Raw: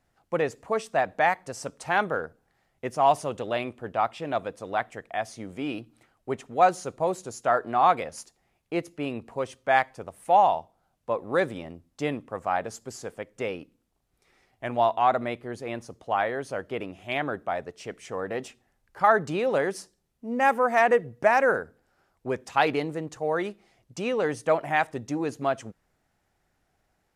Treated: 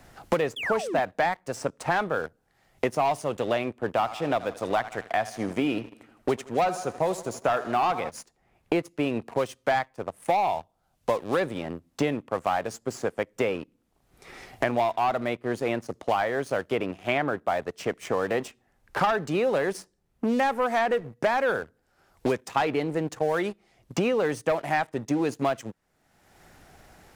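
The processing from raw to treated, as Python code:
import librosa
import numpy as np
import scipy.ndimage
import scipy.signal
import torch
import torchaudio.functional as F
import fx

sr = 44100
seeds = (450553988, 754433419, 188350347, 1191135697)

y = fx.spec_paint(x, sr, seeds[0], shape='fall', start_s=0.56, length_s=0.44, low_hz=210.0, high_hz=3600.0, level_db=-35.0)
y = fx.echo_feedback(y, sr, ms=79, feedback_pct=55, wet_db=-16, at=(4.0, 8.09), fade=0.02)
y = fx.leveller(y, sr, passes=2)
y = fx.band_squash(y, sr, depth_pct=100)
y = y * 10.0 ** (-6.5 / 20.0)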